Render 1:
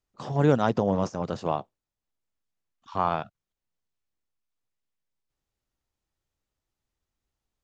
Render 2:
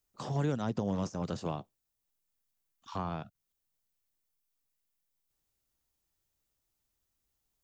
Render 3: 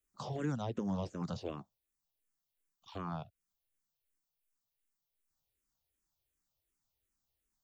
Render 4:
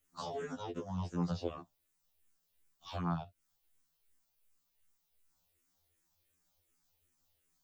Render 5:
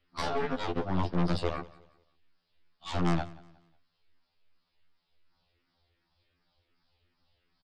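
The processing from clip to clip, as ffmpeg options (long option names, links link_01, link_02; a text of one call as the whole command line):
ffmpeg -i in.wav -filter_complex "[0:a]aemphasis=mode=production:type=50kf,acrossover=split=330|1300[link_01][link_02][link_03];[link_01]acompressor=threshold=-28dB:ratio=4[link_04];[link_02]acompressor=threshold=-38dB:ratio=4[link_05];[link_03]acompressor=threshold=-45dB:ratio=4[link_06];[link_04][link_05][link_06]amix=inputs=3:normalize=0,volume=-2dB" out.wav
ffmpeg -i in.wav -filter_complex "[0:a]asplit=2[link_01][link_02];[link_02]afreqshift=-2.7[link_03];[link_01][link_03]amix=inputs=2:normalize=1,volume=-1dB" out.wav
ffmpeg -i in.wav -af "acompressor=threshold=-49dB:ratio=2,afftfilt=real='re*2*eq(mod(b,4),0)':imag='im*2*eq(mod(b,4),0)':win_size=2048:overlap=0.75,volume=10dB" out.wav
ffmpeg -i in.wav -af "aresample=11025,asoftclip=type=tanh:threshold=-31.5dB,aresample=44100,aeval=exprs='0.0282*(cos(1*acos(clip(val(0)/0.0282,-1,1)))-cos(1*PI/2))+0.01*(cos(4*acos(clip(val(0)/0.0282,-1,1)))-cos(4*PI/2))':channel_layout=same,aecho=1:1:181|362|543:0.0891|0.0303|0.0103,volume=8.5dB" out.wav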